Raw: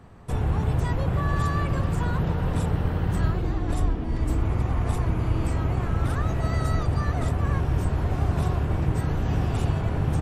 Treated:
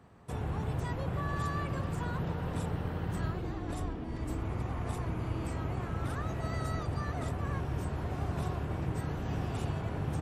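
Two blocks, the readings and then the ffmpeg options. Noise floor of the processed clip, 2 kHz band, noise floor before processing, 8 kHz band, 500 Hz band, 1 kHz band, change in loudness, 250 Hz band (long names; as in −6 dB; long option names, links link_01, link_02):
−39 dBFS, −7.0 dB, −29 dBFS, −7.0 dB, −7.0 dB, −7.0 dB, −10.0 dB, −8.0 dB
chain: -af "highpass=frequency=110:poles=1,volume=-7dB"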